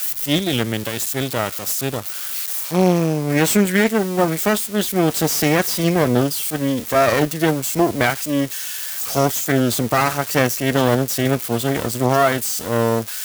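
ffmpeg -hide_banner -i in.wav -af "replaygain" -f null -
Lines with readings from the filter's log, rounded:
track_gain = -0.0 dB
track_peak = 0.515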